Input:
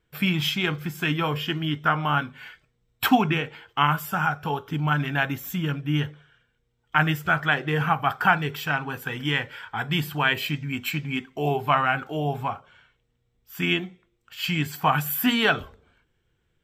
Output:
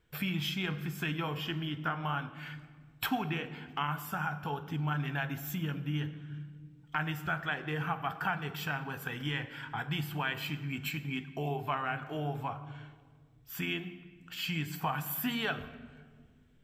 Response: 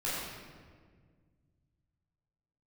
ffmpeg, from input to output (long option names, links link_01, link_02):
-filter_complex "[0:a]acompressor=threshold=-42dB:ratio=2,asplit=2[link_01][link_02];[1:a]atrim=start_sample=2205,lowshelf=frequency=190:gain=5.5[link_03];[link_02][link_03]afir=irnorm=-1:irlink=0,volume=-17.5dB[link_04];[link_01][link_04]amix=inputs=2:normalize=0"